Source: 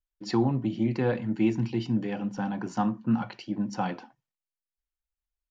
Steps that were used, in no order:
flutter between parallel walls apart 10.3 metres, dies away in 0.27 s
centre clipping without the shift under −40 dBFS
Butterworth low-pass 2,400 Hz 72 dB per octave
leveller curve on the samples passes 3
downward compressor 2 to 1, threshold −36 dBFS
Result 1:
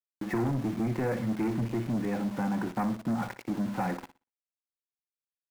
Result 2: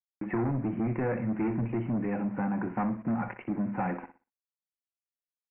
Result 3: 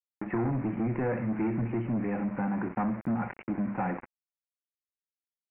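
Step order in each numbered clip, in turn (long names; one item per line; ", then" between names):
leveller curve on the samples, then Butterworth low-pass, then downward compressor, then centre clipping without the shift, then flutter between parallel walls
leveller curve on the samples, then centre clipping without the shift, then flutter between parallel walls, then downward compressor, then Butterworth low-pass
flutter between parallel walls, then centre clipping without the shift, then leveller curve on the samples, then downward compressor, then Butterworth low-pass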